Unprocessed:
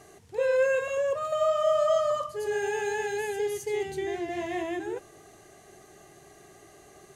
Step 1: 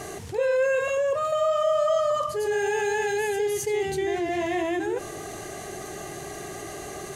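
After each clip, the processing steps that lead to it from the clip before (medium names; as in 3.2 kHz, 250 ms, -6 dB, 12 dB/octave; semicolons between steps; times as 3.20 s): level flattener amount 50%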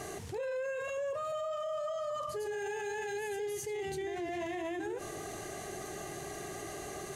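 peak limiter -25 dBFS, peak gain reduction 11 dB; trim -5.5 dB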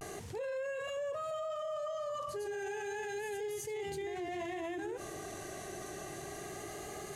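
vibrato 0.31 Hz 39 cents; trim -2 dB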